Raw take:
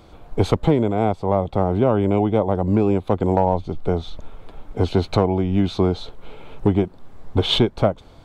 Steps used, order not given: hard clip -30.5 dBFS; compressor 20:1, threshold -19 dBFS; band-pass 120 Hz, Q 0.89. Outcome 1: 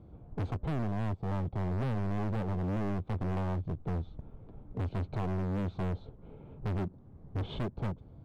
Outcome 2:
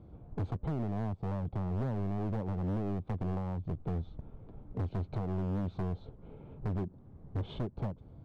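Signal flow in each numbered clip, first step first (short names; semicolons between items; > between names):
band-pass > hard clip > compressor; compressor > band-pass > hard clip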